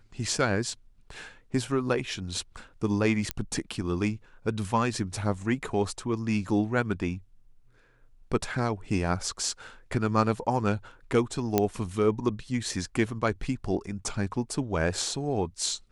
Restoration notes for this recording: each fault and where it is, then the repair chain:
3.31 pop -11 dBFS
11.58 pop -8 dBFS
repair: de-click

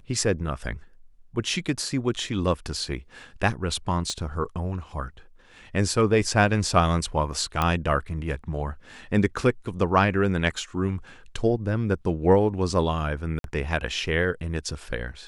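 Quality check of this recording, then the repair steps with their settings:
4.1 pop -18 dBFS
7.62 pop -10 dBFS
13.39–13.44 gap 52 ms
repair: de-click; interpolate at 13.39, 52 ms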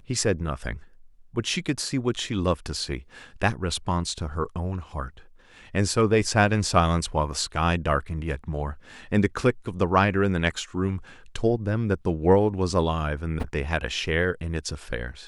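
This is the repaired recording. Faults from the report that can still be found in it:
4.1 pop

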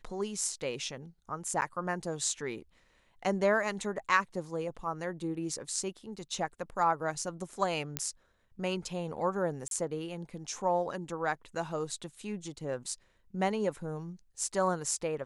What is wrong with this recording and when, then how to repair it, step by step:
1.61–1.62 gap 9.4 ms
7.97 pop -12 dBFS
9.68–9.71 gap 32 ms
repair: de-click; interpolate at 1.61, 9.4 ms; interpolate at 9.68, 32 ms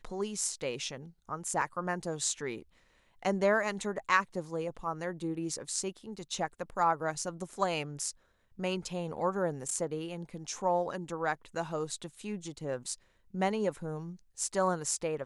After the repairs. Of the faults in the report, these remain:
none

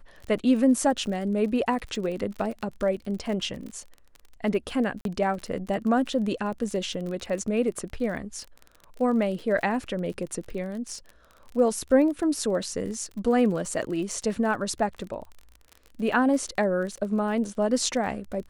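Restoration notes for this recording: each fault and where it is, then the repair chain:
crackle 33/s -34 dBFS
5.01–5.05 gap 42 ms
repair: de-click; interpolate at 5.01, 42 ms

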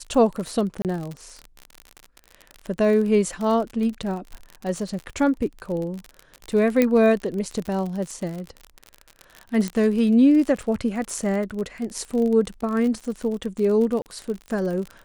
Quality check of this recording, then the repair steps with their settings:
crackle 46/s -28 dBFS
0.82–0.85 gap 28 ms
6.82 pop -6 dBFS
9.68 pop -13 dBFS
14.02–14.06 gap 39 ms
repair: de-click; interpolate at 0.82, 28 ms; interpolate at 14.02, 39 ms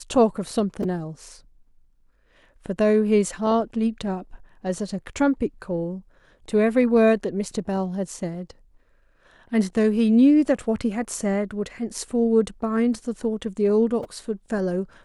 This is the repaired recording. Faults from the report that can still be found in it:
9.68 pop

